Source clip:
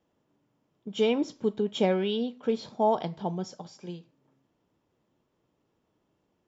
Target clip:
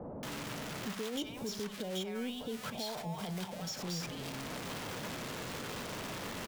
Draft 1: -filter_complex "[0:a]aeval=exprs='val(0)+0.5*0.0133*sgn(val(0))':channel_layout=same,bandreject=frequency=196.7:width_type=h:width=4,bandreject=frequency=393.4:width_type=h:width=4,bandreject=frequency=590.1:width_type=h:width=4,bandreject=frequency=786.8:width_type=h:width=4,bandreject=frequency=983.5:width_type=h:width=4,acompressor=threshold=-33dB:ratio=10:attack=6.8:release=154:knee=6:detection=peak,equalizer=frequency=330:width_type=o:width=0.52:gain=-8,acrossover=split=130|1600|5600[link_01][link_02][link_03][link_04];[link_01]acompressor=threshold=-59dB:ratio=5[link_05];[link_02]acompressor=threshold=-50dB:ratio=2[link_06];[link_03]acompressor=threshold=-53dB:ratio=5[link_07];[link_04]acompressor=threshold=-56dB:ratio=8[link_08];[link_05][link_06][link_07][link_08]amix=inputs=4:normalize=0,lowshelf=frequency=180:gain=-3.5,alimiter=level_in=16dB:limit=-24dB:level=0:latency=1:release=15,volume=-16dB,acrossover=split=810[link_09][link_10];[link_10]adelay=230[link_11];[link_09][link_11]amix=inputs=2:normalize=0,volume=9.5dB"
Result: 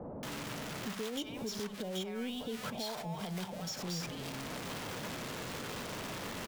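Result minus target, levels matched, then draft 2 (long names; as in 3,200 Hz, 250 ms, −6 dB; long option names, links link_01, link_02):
downward compressor: peak gain reduction +15 dB
-filter_complex "[0:a]aeval=exprs='val(0)+0.5*0.0133*sgn(val(0))':channel_layout=same,equalizer=frequency=330:width_type=o:width=0.52:gain=-8,bandreject=frequency=196.7:width_type=h:width=4,bandreject=frequency=393.4:width_type=h:width=4,bandreject=frequency=590.1:width_type=h:width=4,bandreject=frequency=786.8:width_type=h:width=4,bandreject=frequency=983.5:width_type=h:width=4,acrossover=split=130|1600|5600[link_01][link_02][link_03][link_04];[link_01]acompressor=threshold=-59dB:ratio=5[link_05];[link_02]acompressor=threshold=-50dB:ratio=2[link_06];[link_03]acompressor=threshold=-53dB:ratio=5[link_07];[link_04]acompressor=threshold=-56dB:ratio=8[link_08];[link_05][link_06][link_07][link_08]amix=inputs=4:normalize=0,lowshelf=frequency=180:gain=-3.5,alimiter=level_in=16dB:limit=-24dB:level=0:latency=1:release=15,volume=-16dB,acrossover=split=810[link_09][link_10];[link_10]adelay=230[link_11];[link_09][link_11]amix=inputs=2:normalize=0,volume=9.5dB"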